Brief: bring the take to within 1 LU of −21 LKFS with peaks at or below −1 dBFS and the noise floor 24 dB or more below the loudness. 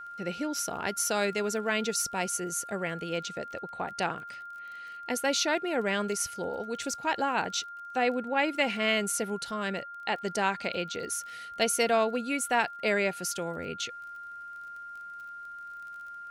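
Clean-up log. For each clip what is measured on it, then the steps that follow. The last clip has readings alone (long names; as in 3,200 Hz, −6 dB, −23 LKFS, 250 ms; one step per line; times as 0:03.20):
crackle rate 31 per second; interfering tone 1,400 Hz; level of the tone −40 dBFS; integrated loudness −30.0 LKFS; sample peak −12.0 dBFS; target loudness −21.0 LKFS
→ click removal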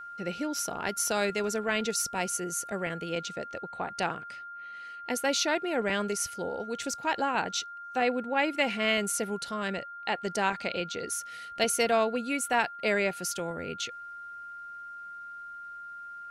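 crackle rate 0 per second; interfering tone 1,400 Hz; level of the tone −40 dBFS
→ notch filter 1,400 Hz, Q 30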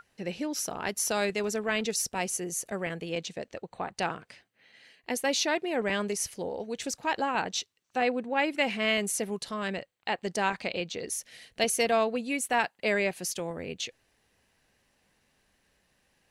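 interfering tone none found; integrated loudness −30.5 LKFS; sample peak −12.0 dBFS; target loudness −21.0 LKFS
→ level +9.5 dB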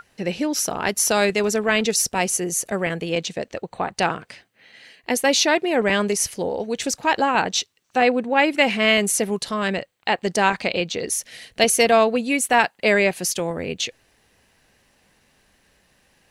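integrated loudness −21.0 LKFS; sample peak −2.5 dBFS; background noise floor −63 dBFS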